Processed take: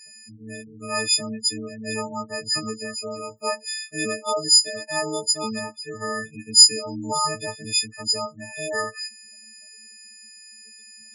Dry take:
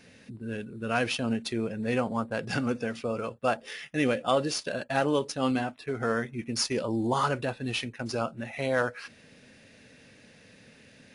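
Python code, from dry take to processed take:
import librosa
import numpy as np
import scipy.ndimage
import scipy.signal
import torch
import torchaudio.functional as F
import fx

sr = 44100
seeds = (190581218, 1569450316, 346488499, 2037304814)

y = fx.freq_snap(x, sr, grid_st=6)
y = fx.high_shelf_res(y, sr, hz=4400.0, db=6.0, q=3.0)
y = fx.spec_gate(y, sr, threshold_db=-15, keep='strong')
y = y * 10.0 ** (-3.0 / 20.0)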